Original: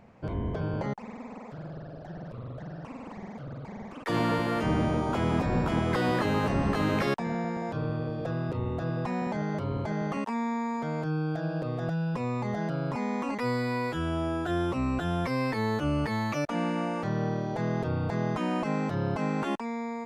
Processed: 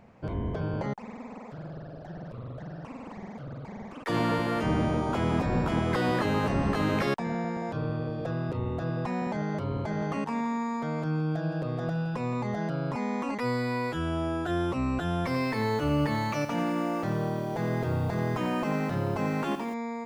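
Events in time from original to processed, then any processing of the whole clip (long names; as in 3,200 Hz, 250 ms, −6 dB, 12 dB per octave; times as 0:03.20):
0:09.76–0:12.42: repeating echo 167 ms, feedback 42%, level −12 dB
0:15.18–0:19.74: feedback echo at a low word length 89 ms, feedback 55%, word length 8 bits, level −9 dB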